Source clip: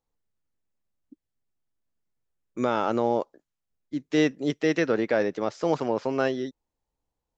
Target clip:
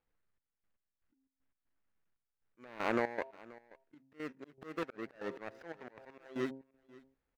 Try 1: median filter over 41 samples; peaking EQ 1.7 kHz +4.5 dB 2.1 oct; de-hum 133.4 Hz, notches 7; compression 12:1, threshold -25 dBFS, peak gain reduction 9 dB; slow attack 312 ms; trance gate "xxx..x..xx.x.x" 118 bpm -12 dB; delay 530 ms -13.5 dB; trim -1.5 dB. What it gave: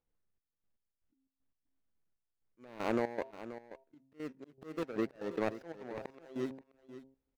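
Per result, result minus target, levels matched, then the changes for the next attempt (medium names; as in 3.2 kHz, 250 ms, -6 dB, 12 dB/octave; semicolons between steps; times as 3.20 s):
echo-to-direct +8 dB; 2 kHz band -4.5 dB
change: delay 530 ms -21.5 dB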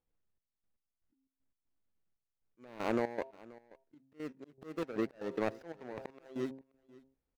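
2 kHz band -4.5 dB
change: peaking EQ 1.7 kHz +13.5 dB 2.1 oct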